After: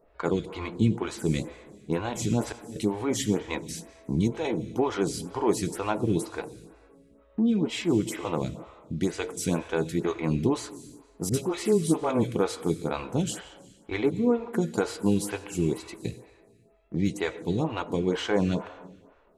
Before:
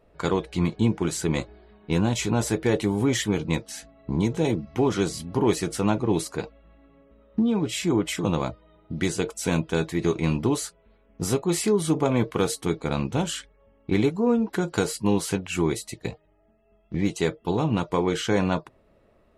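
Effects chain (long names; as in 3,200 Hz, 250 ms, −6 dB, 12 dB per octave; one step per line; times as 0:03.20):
0:01.98–0:02.76: volume swells 768 ms
0:11.29–0:12.32: all-pass dispersion highs, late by 48 ms, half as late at 980 Hz
on a send at −13 dB: convolution reverb RT60 1.5 s, pre-delay 68 ms
on the sum: phaser with staggered stages 2.1 Hz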